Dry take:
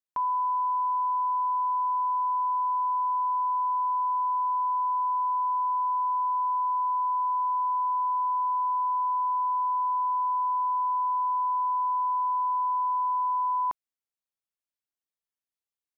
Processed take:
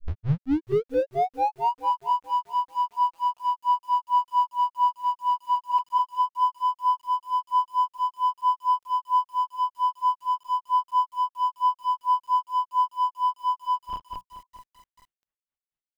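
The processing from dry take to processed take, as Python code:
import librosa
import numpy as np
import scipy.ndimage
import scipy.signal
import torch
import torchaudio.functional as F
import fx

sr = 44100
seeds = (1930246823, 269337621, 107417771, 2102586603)

p1 = fx.tape_start_head(x, sr, length_s=1.72)
p2 = p1 + fx.echo_feedback(p1, sr, ms=441, feedback_pct=36, wet_db=-24, dry=0)
p3 = fx.spec_gate(p2, sr, threshold_db=-20, keep='strong')
p4 = fx.lpc_vocoder(p3, sr, seeds[0], excitation='pitch_kept', order=8)
p5 = fx.schmitt(p4, sr, flips_db=-49.0)
p6 = p4 + F.gain(torch.from_numpy(p5), -11.5).numpy()
p7 = fx.air_absorb(p6, sr, metres=210.0)
p8 = fx.hum_notches(p7, sr, base_hz=60, count=3)
p9 = fx.granulator(p8, sr, seeds[1], grain_ms=157.0, per_s=4.4, spray_ms=100.0, spread_st=0)
p10 = fx.echo_crushed(p9, sr, ms=431, feedback_pct=35, bits=9, wet_db=-11)
y = F.gain(torch.from_numpy(p10), 5.5).numpy()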